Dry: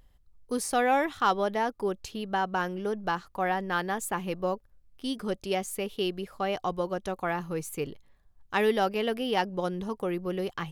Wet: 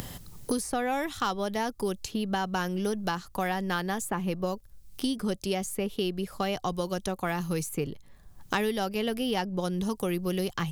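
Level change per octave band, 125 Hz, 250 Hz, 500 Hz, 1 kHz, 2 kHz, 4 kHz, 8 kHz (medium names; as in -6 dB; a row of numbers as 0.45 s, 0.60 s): +4.5 dB, +3.0 dB, -2.0 dB, -3.5 dB, -2.0 dB, +1.5 dB, +2.0 dB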